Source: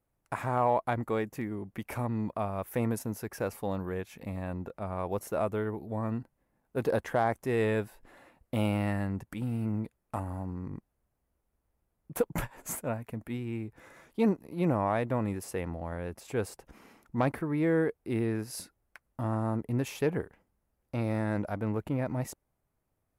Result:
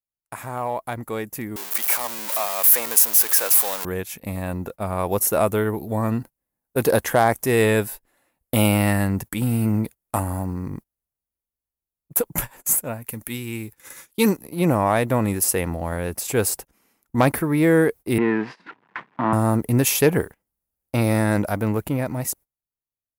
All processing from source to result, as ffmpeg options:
ffmpeg -i in.wav -filter_complex "[0:a]asettb=1/sr,asplit=3[link_01][link_02][link_03];[link_01]atrim=end=1.564[link_04];[link_02]atrim=start=1.56:end=3.85,asetpts=PTS-STARTPTS,afade=type=in:duration=0.004:curve=qsin,afade=type=out:start_time=2.286:duration=0.004:curve=qsin,aeval=exprs='val(0)+0.5*0.0211*sgn(val(0))':channel_layout=same,highpass=700[link_05];[link_03]atrim=start=3.846[link_06];[link_04][link_05]acrossfade=duration=0.004:curve1=hsin:curve2=qsin[link_07];[link_07][link_06]acrossfade=duration=0.004:curve1=qsin:curve2=hsin,asettb=1/sr,asplit=3[link_08][link_09][link_10];[link_08]atrim=end=13.074[link_11];[link_09]atrim=start=13.07:end=14.37,asetpts=PTS-STARTPTS,afade=type=in:duration=0.004:curve=qsin,afade=type=out:start_time=1.296:duration=0.004:curve=qsin,asuperstop=centerf=680:order=4:qfactor=5.4,highshelf=frequency=2100:gain=10[link_12];[link_10]atrim=start=14.366[link_13];[link_11][link_12]acrossfade=duration=0.004:curve1=hsin:curve2=qsin[link_14];[link_14][link_13]acrossfade=duration=0.004:curve1=qsin:curve2=hsin,asettb=1/sr,asplit=3[link_15][link_16][link_17];[link_15]atrim=end=18.184[link_18];[link_16]atrim=start=18.18:end=19.33,asetpts=PTS-STARTPTS,afade=type=in:duration=0.004:curve=qsin,afade=type=out:start_time=1.146:duration=0.004:curve=qsin,aeval=exprs='val(0)+0.5*0.01*sgn(val(0))':channel_layout=same,highpass=frequency=170:width=0.5412,highpass=frequency=170:width=1.3066,equalizer=frequency=580:width_type=q:width=4:gain=-5,equalizer=frequency=1000:width_type=q:width=4:gain=8,equalizer=frequency=1800:width_type=q:width=4:gain=5,lowpass=frequency=2600:width=0.5412,lowpass=frequency=2600:width=1.3066[link_19];[link_17]atrim=start=19.326[link_20];[link_18][link_19]acrossfade=duration=0.004:curve1=hsin:curve2=qsin[link_21];[link_21][link_20]acrossfade=duration=0.004:curve1=qsin:curve2=hsin,aemphasis=mode=production:type=75fm,agate=range=-22dB:threshold=-44dB:ratio=16:detection=peak,dynaudnorm=framelen=170:gausssize=17:maxgain=13.5dB,volume=-1dB" out.wav

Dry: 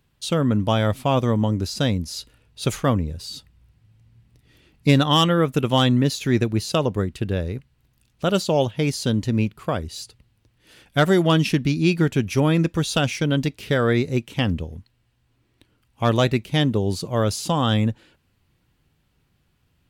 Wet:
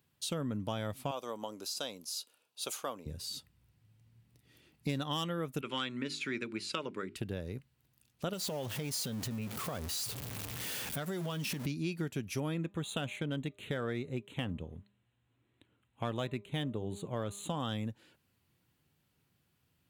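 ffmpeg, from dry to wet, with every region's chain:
ffmpeg -i in.wav -filter_complex "[0:a]asettb=1/sr,asplit=3[link_01][link_02][link_03];[link_01]atrim=end=1.114[link_04];[link_02]atrim=start=1.11:end=3.06,asetpts=PTS-STARTPTS,afade=type=in:duration=0.004:curve=qsin,afade=type=out:start_time=1.946:duration=0.004:curve=qsin,highpass=570,equalizer=frequency=1900:width=3:gain=-10[link_05];[link_03]atrim=start=3.056[link_06];[link_04][link_05]acrossfade=duration=0.004:curve1=hsin:curve2=qsin[link_07];[link_07][link_06]acrossfade=duration=0.004:curve1=qsin:curve2=hsin,asettb=1/sr,asplit=3[link_08][link_09][link_10];[link_08]atrim=end=5.614[link_11];[link_09]atrim=start=5.61:end=7.16,asetpts=PTS-STARTPTS,afade=type=in:duration=0.004:curve=qsin,afade=type=out:start_time=1.546:duration=0.004:curve=qsin,asuperstop=centerf=680:order=4:qfactor=6.7,highpass=260,equalizer=frequency=510:width_type=q:width=4:gain=-5,equalizer=frequency=780:width_type=q:width=4:gain=-8,equalizer=frequency=1400:width_type=q:width=4:gain=7,equalizer=frequency=2300:width_type=q:width=4:gain=10,equalizer=frequency=6200:width_type=q:width=4:gain=-9,lowpass=frequency=8000:width=0.5412,lowpass=frequency=8000:width=1.3066,bandreject=frequency=50:width_type=h:width=6,bandreject=frequency=100:width_type=h:width=6,bandreject=frequency=150:width_type=h:width=6,bandreject=frequency=200:width_type=h:width=6,bandreject=frequency=250:width_type=h:width=6,bandreject=frequency=300:width_type=h:width=6,bandreject=frequency=350:width_type=h:width=6,bandreject=frequency=400:width_type=h:width=6[link_12];[link_10]atrim=start=7.156[link_13];[link_11][link_12]acrossfade=duration=0.004:curve1=hsin:curve2=qsin[link_14];[link_14][link_13]acrossfade=duration=0.004:curve1=qsin:curve2=hsin,asettb=1/sr,asplit=3[link_15][link_16][link_17];[link_15]atrim=end=8.334[link_18];[link_16]atrim=start=8.33:end=11.66,asetpts=PTS-STARTPTS,afade=type=in:duration=0.004:curve=qsin,afade=type=out:start_time=3.326:duration=0.004:curve=qsin,aeval=exprs='val(0)+0.5*0.0473*sgn(val(0))':channel_layout=same,bandreject=frequency=330:width=6.7,acompressor=threshold=-22dB:ratio=6:attack=3.2:release=140:knee=1:detection=peak[link_19];[link_17]atrim=start=11.656[link_20];[link_18][link_19]acrossfade=duration=0.004:curve1=hsin:curve2=qsin[link_21];[link_21][link_20]acrossfade=duration=0.004:curve1=qsin:curve2=hsin,asettb=1/sr,asplit=3[link_22][link_23][link_24];[link_22]atrim=end=12.544[link_25];[link_23]atrim=start=12.54:end=17.6,asetpts=PTS-STARTPTS,afade=type=in:duration=0.004:curve=qsin,afade=type=out:start_time=5.056:duration=0.004:curve=qsin,asuperstop=centerf=5200:order=8:qfactor=2.1,bandreject=frequency=201.8:width_type=h:width=4,bandreject=frequency=403.6:width_type=h:width=4,bandreject=frequency=605.4:width_type=h:width=4,bandreject=frequency=807.2:width_type=h:width=4,bandreject=frequency=1009:width_type=h:width=4,bandreject=frequency=1210.8:width_type=h:width=4,adynamicsmooth=sensitivity=3.5:basefreq=6400[link_26];[link_24]atrim=start=17.596[link_27];[link_25][link_26]acrossfade=duration=0.004:curve1=hsin:curve2=qsin[link_28];[link_28][link_27]acrossfade=duration=0.004:curve1=qsin:curve2=hsin,highpass=95,highshelf=frequency=8900:gain=9.5,acompressor=threshold=-27dB:ratio=3,volume=-8dB" out.wav

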